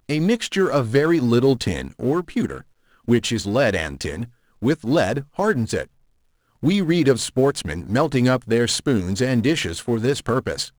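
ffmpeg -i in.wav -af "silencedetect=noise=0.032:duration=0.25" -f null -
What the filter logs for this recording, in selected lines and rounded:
silence_start: 2.61
silence_end: 3.08 | silence_duration: 0.47
silence_start: 4.25
silence_end: 4.62 | silence_duration: 0.38
silence_start: 5.83
silence_end: 6.63 | silence_duration: 0.80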